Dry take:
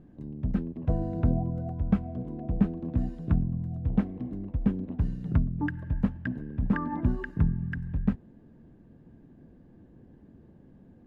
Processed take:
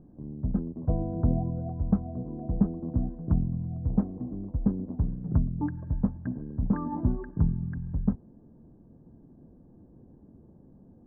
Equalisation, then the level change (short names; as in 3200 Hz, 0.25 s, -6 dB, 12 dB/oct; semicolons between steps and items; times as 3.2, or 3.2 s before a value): LPF 1100 Hz 24 dB/oct; 0.0 dB